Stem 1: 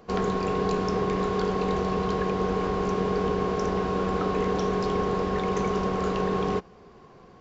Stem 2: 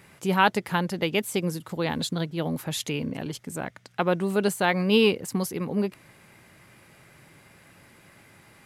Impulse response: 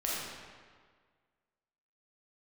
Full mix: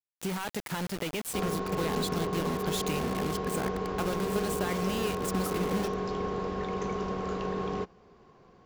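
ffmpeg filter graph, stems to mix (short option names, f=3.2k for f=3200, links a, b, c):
-filter_complex "[0:a]adelay=1250,volume=-6.5dB[a];[1:a]alimiter=limit=-17dB:level=0:latency=1:release=17,acompressor=threshold=-29dB:ratio=10,acrusher=bits=5:mix=0:aa=0.000001,volume=-1dB[b];[a][b]amix=inputs=2:normalize=0"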